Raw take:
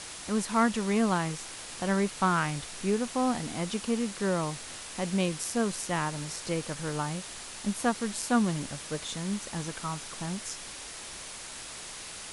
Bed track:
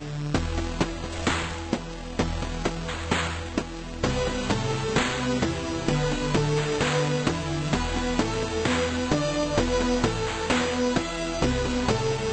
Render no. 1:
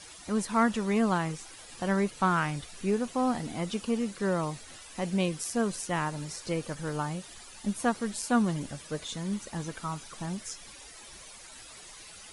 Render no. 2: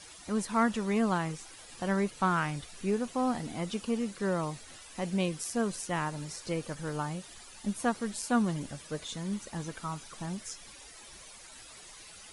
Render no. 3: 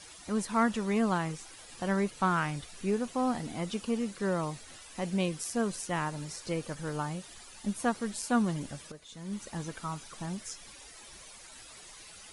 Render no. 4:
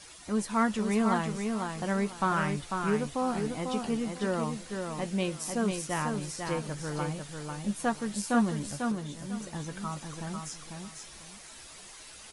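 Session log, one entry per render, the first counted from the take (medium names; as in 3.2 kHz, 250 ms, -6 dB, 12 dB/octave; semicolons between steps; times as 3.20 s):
noise reduction 12 dB, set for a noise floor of -43 dBFS
trim -2 dB
8.92–9.43 s: fade in quadratic, from -13 dB
doubling 14 ms -11 dB; feedback delay 496 ms, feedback 24%, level -5 dB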